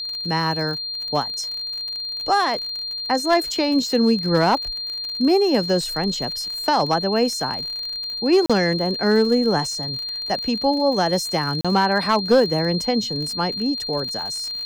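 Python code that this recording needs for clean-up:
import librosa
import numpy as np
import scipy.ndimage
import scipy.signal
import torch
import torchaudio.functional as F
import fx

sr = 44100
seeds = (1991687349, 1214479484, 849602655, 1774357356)

y = fx.fix_declip(x, sr, threshold_db=-9.5)
y = fx.fix_declick_ar(y, sr, threshold=6.5)
y = fx.notch(y, sr, hz=4200.0, q=30.0)
y = fx.fix_interpolate(y, sr, at_s=(8.46, 11.61), length_ms=36.0)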